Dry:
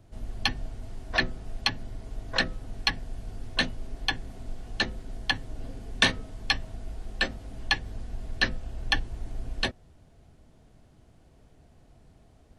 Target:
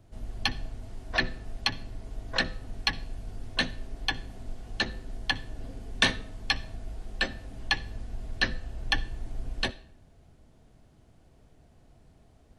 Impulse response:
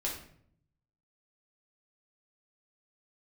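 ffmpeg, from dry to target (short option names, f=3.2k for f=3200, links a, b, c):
-filter_complex "[0:a]asplit=2[a][b];[1:a]atrim=start_sample=2205,adelay=61[c];[b][c]afir=irnorm=-1:irlink=0,volume=-22.5dB[d];[a][d]amix=inputs=2:normalize=0,volume=-1.5dB"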